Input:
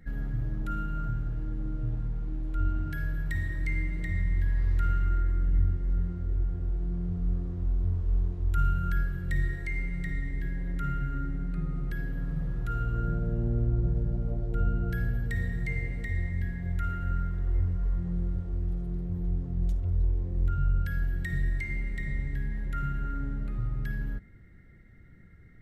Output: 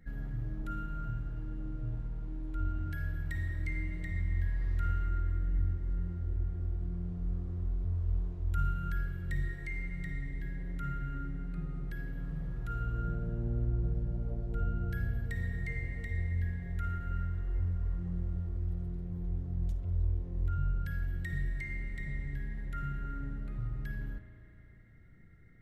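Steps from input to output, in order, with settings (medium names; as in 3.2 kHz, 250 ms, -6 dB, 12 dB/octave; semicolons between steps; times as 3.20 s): spring tank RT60 3.1 s, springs 35 ms, chirp 75 ms, DRR 6.5 dB; trim -5.5 dB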